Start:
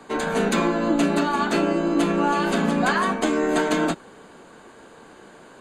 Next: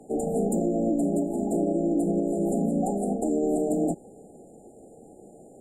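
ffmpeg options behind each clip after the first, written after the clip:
-af "afftfilt=real='re*(1-between(b*sr/4096,850,7000))':imag='im*(1-between(b*sr/4096,850,7000))':win_size=4096:overlap=0.75,equalizer=f=1.7k:w=0.98:g=-8.5,alimiter=limit=-16.5dB:level=0:latency=1:release=67"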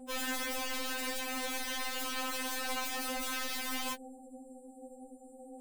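-af "aeval=exprs='0.158*(cos(1*acos(clip(val(0)/0.158,-1,1)))-cos(1*PI/2))+0.0251*(cos(4*acos(clip(val(0)/0.158,-1,1)))-cos(4*PI/2))+0.0126*(cos(5*acos(clip(val(0)/0.158,-1,1)))-cos(5*PI/2))+0.0112*(cos(6*acos(clip(val(0)/0.158,-1,1)))-cos(6*PI/2))+0.00282*(cos(8*acos(clip(val(0)/0.158,-1,1)))-cos(8*PI/2))':c=same,aeval=exprs='(mod(25.1*val(0)+1,2)-1)/25.1':c=same,afftfilt=real='re*3.46*eq(mod(b,12),0)':imag='im*3.46*eq(mod(b,12),0)':win_size=2048:overlap=0.75,volume=-2dB"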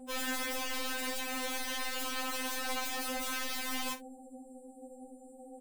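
-filter_complex "[0:a]asplit=2[a][b];[b]adelay=47,volume=-13dB[c];[a][c]amix=inputs=2:normalize=0"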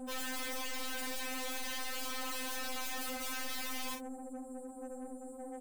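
-af "aeval=exprs='(tanh(200*val(0)+0.4)-tanh(0.4))/200':c=same,volume=7.5dB"

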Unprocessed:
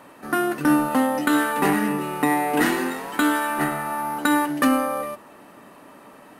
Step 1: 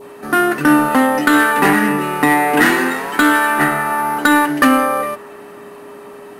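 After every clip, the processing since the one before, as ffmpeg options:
-af "adynamicequalizer=threshold=0.0141:dfrequency=1700:dqfactor=1.2:tfrequency=1700:tqfactor=1.2:attack=5:release=100:ratio=0.375:range=3:mode=boostabove:tftype=bell,aeval=exprs='val(0)+0.00794*sin(2*PI*410*n/s)':c=same,acontrast=80"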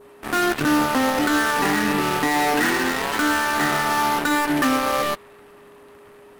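-af "alimiter=limit=-13dB:level=0:latency=1:release=108,aeval=exprs='0.224*(cos(1*acos(clip(val(0)/0.224,-1,1)))-cos(1*PI/2))+0.0447*(cos(7*acos(clip(val(0)/0.224,-1,1)))-cos(7*PI/2))':c=same"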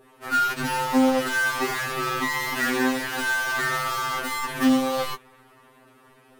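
-af "afftfilt=real='re*2.45*eq(mod(b,6),0)':imag='im*2.45*eq(mod(b,6),0)':win_size=2048:overlap=0.75,volume=-1.5dB"

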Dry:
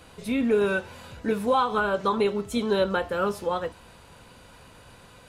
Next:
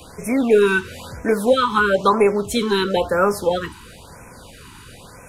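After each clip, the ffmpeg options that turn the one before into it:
-filter_complex "[0:a]highshelf=f=7.1k:g=4.5,acrossover=split=220|650|3500[a][b][c][d];[a]aeval=exprs='0.0141*(abs(mod(val(0)/0.0141+3,4)-2)-1)':c=same[e];[e][b][c][d]amix=inputs=4:normalize=0,afftfilt=real='re*(1-between(b*sr/1024,560*pow(3800/560,0.5+0.5*sin(2*PI*1*pts/sr))/1.41,560*pow(3800/560,0.5+0.5*sin(2*PI*1*pts/sr))*1.41))':imag='im*(1-between(b*sr/1024,560*pow(3800/560,0.5+0.5*sin(2*PI*1*pts/sr))/1.41,560*pow(3800/560,0.5+0.5*sin(2*PI*1*pts/sr))*1.41))':win_size=1024:overlap=0.75,volume=9dB"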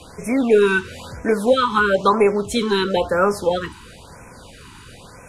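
-af "lowpass=10k"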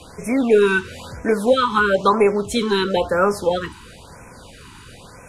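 -af anull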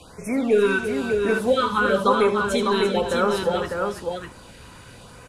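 -af "aecho=1:1:76|341|600:0.316|0.335|0.596,volume=-4.5dB"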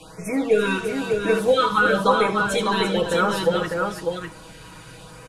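-af "aecho=1:1:6.3:0.86"

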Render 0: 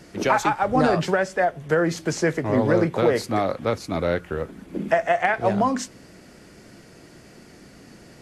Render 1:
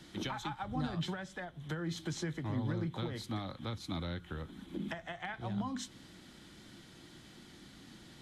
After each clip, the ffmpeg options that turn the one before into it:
-filter_complex "[0:a]acrossover=split=180[a][b];[b]acompressor=threshold=-30dB:ratio=6[c];[a][c]amix=inputs=2:normalize=0,superequalizer=7b=0.398:8b=0.447:13b=3.55,volume=-7.5dB"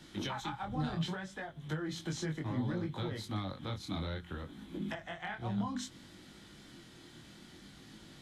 -af "flanger=delay=19:depth=6.7:speed=0.63,volume=3.5dB"

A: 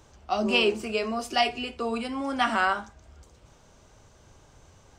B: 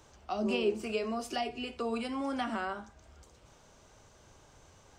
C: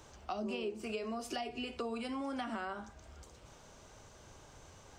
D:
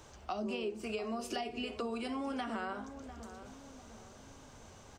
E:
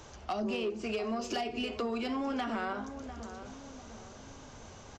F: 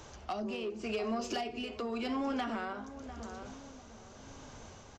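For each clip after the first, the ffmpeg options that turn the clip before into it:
-filter_complex "[0:a]acrossover=split=510[a][b];[b]acompressor=threshold=-36dB:ratio=4[c];[a][c]amix=inputs=2:normalize=0,lowshelf=f=230:g=-5,volume=-1.5dB"
-af "acompressor=threshold=-39dB:ratio=5,volume=2.5dB"
-filter_complex "[0:a]asplit=2[a][b];[b]adelay=698,lowpass=f=1k:p=1,volume=-10.5dB,asplit=2[c][d];[d]adelay=698,lowpass=f=1k:p=1,volume=0.5,asplit=2[e][f];[f]adelay=698,lowpass=f=1k:p=1,volume=0.5,asplit=2[g][h];[h]adelay=698,lowpass=f=1k:p=1,volume=0.5,asplit=2[i][j];[j]adelay=698,lowpass=f=1k:p=1,volume=0.5[k];[a][c][e][g][i][k]amix=inputs=6:normalize=0,volume=1dB"
-af "aresample=16000,asoftclip=type=tanh:threshold=-34dB,aresample=44100,aeval=exprs='0.0224*(cos(1*acos(clip(val(0)/0.0224,-1,1)))-cos(1*PI/2))+0.002*(cos(3*acos(clip(val(0)/0.0224,-1,1)))-cos(3*PI/2))':c=same,volume=7.5dB"
-af "tremolo=f=0.89:d=0.41"

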